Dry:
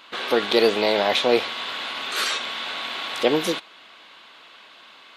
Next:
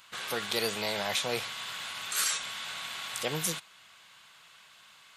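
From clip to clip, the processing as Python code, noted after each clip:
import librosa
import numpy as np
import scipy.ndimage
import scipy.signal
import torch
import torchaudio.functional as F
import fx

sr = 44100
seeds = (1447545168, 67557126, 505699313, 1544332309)

y = fx.curve_eq(x, sr, hz=(160.0, 270.0, 630.0, 1500.0, 3900.0, 7400.0), db=(0, -19, -14, -8, -9, 6))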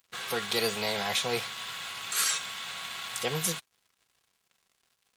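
y = np.sign(x) * np.maximum(np.abs(x) - 10.0 ** (-50.5 / 20.0), 0.0)
y = fx.notch_comb(y, sr, f0_hz=300.0)
y = F.gain(torch.from_numpy(y), 3.5).numpy()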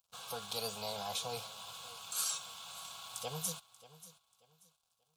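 y = fx.fixed_phaser(x, sr, hz=790.0, stages=4)
y = fx.echo_feedback(y, sr, ms=585, feedback_pct=28, wet_db=-17.5)
y = F.gain(torch.from_numpy(y), -6.5).numpy()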